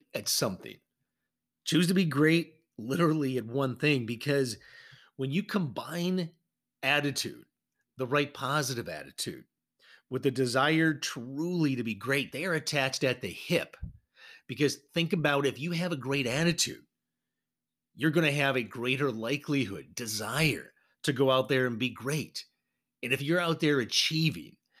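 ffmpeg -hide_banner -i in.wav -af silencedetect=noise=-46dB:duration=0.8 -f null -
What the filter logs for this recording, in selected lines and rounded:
silence_start: 0.75
silence_end: 1.66 | silence_duration: 0.91
silence_start: 16.79
silence_end: 17.97 | silence_duration: 1.18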